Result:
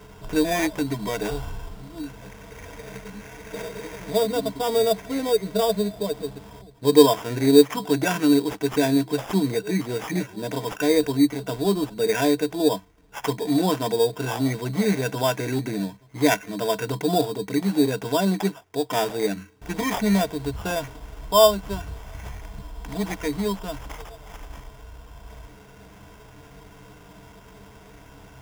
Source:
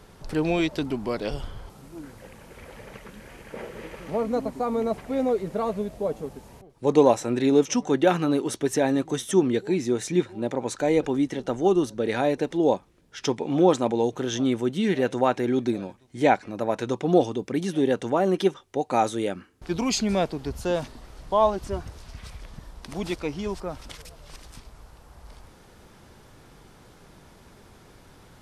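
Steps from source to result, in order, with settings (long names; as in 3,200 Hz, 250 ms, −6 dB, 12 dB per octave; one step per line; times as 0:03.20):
dynamic equaliser 1,800 Hz, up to +4 dB, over −42 dBFS, Q 0.87
harmonic and percussive parts rebalanced percussive −5 dB
EQ curve with evenly spaced ripples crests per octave 1.7, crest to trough 18 dB
in parallel at −1.5 dB: downward compressor, threshold −31 dBFS, peak gain reduction 23.5 dB
on the sum: sample-rate reduction 4,200 Hz, jitter 0%
level −2.5 dB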